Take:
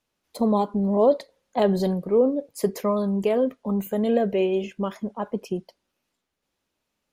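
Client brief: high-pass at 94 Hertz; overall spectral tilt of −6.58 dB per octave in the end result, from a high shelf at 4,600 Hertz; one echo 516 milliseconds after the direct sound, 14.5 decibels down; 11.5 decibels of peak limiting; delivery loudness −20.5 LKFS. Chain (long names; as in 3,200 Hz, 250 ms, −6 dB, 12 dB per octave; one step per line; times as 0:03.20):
high-pass filter 94 Hz
high-shelf EQ 4,600 Hz +3.5 dB
brickwall limiter −19 dBFS
single-tap delay 516 ms −14.5 dB
level +8 dB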